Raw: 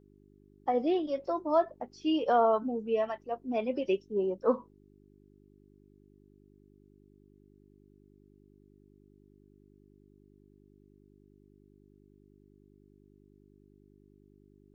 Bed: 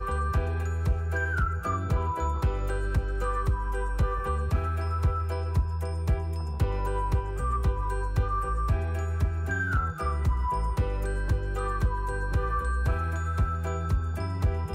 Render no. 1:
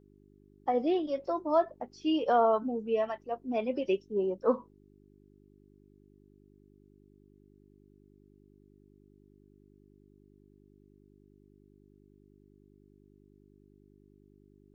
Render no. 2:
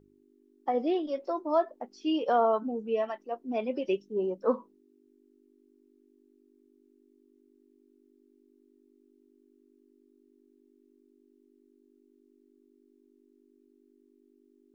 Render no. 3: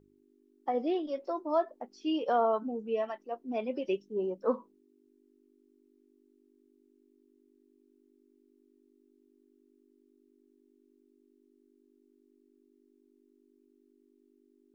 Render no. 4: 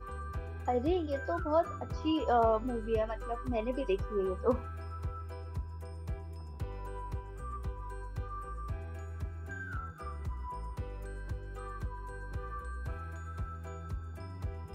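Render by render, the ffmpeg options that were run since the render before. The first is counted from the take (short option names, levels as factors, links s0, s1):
-af anull
-af "bandreject=f=50:t=h:w=4,bandreject=f=100:t=h:w=4,bandreject=f=150:t=h:w=4,bandreject=f=200:t=h:w=4"
-af "volume=0.75"
-filter_complex "[1:a]volume=0.224[s0];[0:a][s0]amix=inputs=2:normalize=0"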